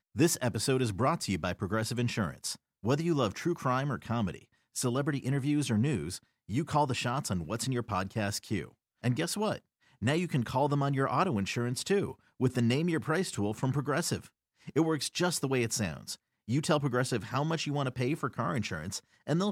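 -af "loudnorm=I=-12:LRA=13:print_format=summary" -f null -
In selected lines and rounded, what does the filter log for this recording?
Input Integrated:    -31.6 LUFS
Input True Peak:     -14.0 dBTP
Input LRA:             1.8 LU
Input Threshold:     -41.7 LUFS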